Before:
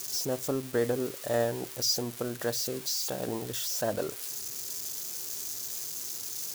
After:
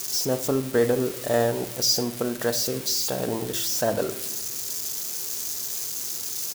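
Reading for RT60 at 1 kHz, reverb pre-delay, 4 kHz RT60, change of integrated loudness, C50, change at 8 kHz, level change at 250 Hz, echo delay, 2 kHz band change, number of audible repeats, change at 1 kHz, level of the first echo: 0.90 s, 4 ms, 0.65 s, +6.5 dB, 13.5 dB, +6.0 dB, +7.0 dB, 77 ms, +6.5 dB, 1, +6.5 dB, −18.5 dB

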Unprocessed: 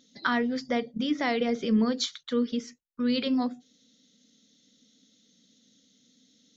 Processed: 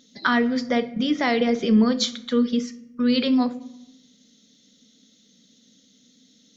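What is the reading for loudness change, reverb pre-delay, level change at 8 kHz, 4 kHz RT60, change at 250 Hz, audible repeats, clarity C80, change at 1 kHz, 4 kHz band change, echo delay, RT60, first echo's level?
+6.0 dB, 5 ms, can't be measured, 0.55 s, +6.5 dB, no echo audible, 19.5 dB, +5.5 dB, +6.0 dB, no echo audible, 0.90 s, no echo audible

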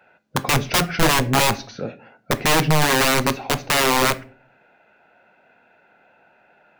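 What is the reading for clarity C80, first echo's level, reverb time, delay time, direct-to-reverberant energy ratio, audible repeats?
23.5 dB, no echo audible, 0.45 s, no echo audible, 12.0 dB, no echo audible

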